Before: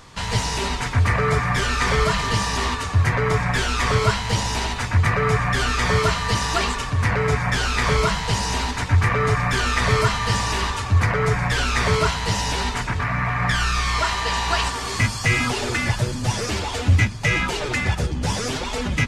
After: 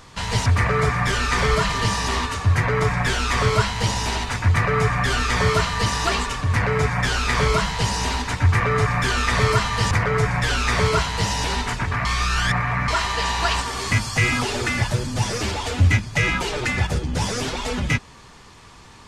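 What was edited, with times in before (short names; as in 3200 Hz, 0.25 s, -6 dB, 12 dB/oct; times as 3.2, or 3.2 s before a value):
0.46–0.95 cut
10.4–10.99 cut
13.13–13.96 reverse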